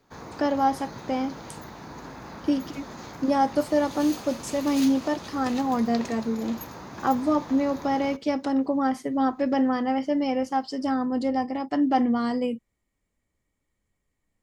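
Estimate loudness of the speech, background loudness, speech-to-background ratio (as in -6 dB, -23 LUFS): -26.0 LUFS, -39.5 LUFS, 13.5 dB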